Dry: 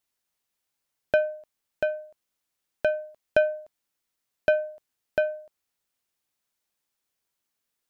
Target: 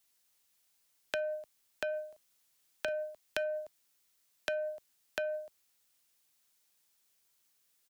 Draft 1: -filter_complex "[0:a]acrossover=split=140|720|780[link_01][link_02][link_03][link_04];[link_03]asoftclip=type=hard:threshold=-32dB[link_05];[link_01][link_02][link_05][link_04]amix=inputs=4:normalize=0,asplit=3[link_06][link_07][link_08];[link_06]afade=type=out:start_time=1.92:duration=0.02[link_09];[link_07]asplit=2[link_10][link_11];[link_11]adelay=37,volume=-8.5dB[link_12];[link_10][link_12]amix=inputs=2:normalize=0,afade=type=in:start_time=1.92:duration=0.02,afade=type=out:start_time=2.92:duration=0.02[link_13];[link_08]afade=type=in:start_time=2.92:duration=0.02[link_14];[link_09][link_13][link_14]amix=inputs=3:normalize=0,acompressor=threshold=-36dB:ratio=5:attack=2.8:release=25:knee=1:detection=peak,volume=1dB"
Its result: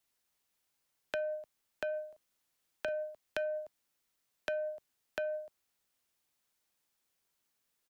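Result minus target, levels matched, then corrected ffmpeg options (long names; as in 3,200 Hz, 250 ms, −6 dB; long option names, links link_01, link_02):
4,000 Hz band −4.5 dB
-filter_complex "[0:a]acrossover=split=140|720|780[link_01][link_02][link_03][link_04];[link_03]asoftclip=type=hard:threshold=-32dB[link_05];[link_01][link_02][link_05][link_04]amix=inputs=4:normalize=0,asplit=3[link_06][link_07][link_08];[link_06]afade=type=out:start_time=1.92:duration=0.02[link_09];[link_07]asplit=2[link_10][link_11];[link_11]adelay=37,volume=-8.5dB[link_12];[link_10][link_12]amix=inputs=2:normalize=0,afade=type=in:start_time=1.92:duration=0.02,afade=type=out:start_time=2.92:duration=0.02[link_13];[link_08]afade=type=in:start_time=2.92:duration=0.02[link_14];[link_09][link_13][link_14]amix=inputs=3:normalize=0,acompressor=threshold=-36dB:ratio=5:attack=2.8:release=25:knee=1:detection=peak,highshelf=frequency=2500:gain=8.5,volume=1dB"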